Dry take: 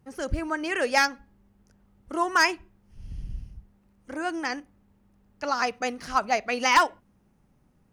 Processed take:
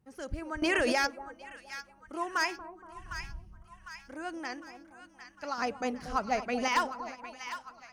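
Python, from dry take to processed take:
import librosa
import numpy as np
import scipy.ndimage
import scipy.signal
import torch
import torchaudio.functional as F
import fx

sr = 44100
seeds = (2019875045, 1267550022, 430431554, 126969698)

y = fx.low_shelf(x, sr, hz=480.0, db=11.0, at=(5.58, 6.68))
y = fx.echo_split(y, sr, split_hz=990.0, low_ms=235, high_ms=754, feedback_pct=52, wet_db=-10)
y = fx.env_flatten(y, sr, amount_pct=100, at=(0.62, 1.07))
y = y * librosa.db_to_amplitude(-9.0)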